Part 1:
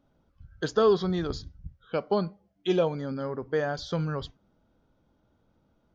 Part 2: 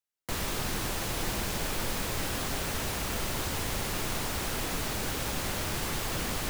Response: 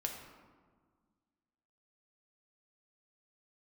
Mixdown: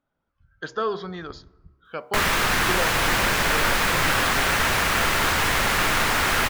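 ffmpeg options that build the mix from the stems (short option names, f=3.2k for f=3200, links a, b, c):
-filter_complex "[0:a]volume=-15dB,asplit=2[a][b];[b]volume=-19dB[c];[1:a]adelay=1850,volume=-2.5dB,asplit=2[d][e];[e]volume=-8.5dB[f];[2:a]atrim=start_sample=2205[g];[c][f]amix=inputs=2:normalize=0[h];[h][g]afir=irnorm=-1:irlink=0[i];[a][d][i]amix=inputs=3:normalize=0,equalizer=f=1.6k:w=0.58:g=12,bandreject=f=67.34:t=h:w=4,bandreject=f=134.68:t=h:w=4,bandreject=f=202.02:t=h:w=4,bandreject=f=269.36:t=h:w=4,bandreject=f=336.7:t=h:w=4,bandreject=f=404.04:t=h:w=4,bandreject=f=471.38:t=h:w=4,bandreject=f=538.72:t=h:w=4,bandreject=f=606.06:t=h:w=4,bandreject=f=673.4:t=h:w=4,bandreject=f=740.74:t=h:w=4,bandreject=f=808.08:t=h:w=4,bandreject=f=875.42:t=h:w=4,bandreject=f=942.76:t=h:w=4,bandreject=f=1.0101k:t=h:w=4,dynaudnorm=f=170:g=5:m=6dB"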